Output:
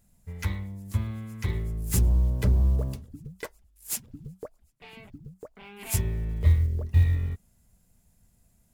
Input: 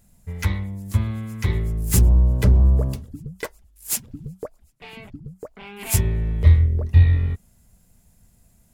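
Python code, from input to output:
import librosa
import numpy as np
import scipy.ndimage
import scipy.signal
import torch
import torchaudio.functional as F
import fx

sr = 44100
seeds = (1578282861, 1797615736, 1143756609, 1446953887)

y = fx.block_float(x, sr, bits=7)
y = F.gain(torch.from_numpy(y), -7.0).numpy()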